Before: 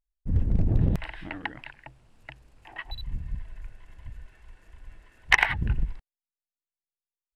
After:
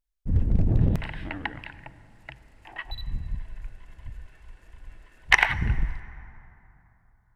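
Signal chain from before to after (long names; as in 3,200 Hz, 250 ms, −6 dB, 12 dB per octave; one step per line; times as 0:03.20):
dense smooth reverb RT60 3.3 s, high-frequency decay 0.45×, DRR 15.5 dB
level +1.5 dB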